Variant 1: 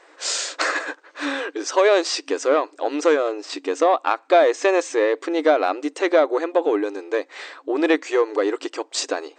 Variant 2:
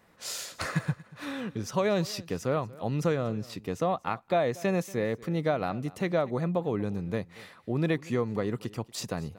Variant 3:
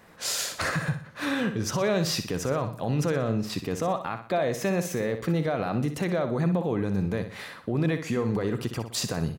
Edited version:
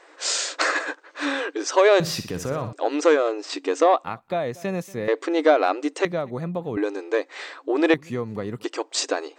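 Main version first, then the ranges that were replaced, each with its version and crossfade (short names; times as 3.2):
1
2–2.73 from 3
4.04–5.08 from 2
6.05–6.77 from 2
7.94–8.64 from 2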